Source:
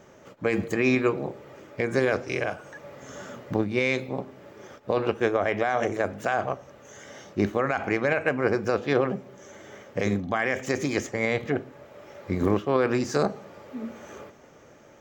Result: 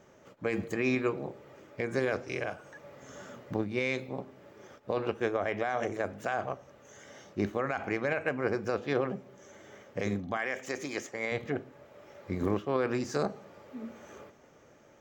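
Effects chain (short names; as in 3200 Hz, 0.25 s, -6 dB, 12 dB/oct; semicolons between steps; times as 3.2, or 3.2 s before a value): 10.37–11.32 HPF 400 Hz 6 dB/oct; gain -6.5 dB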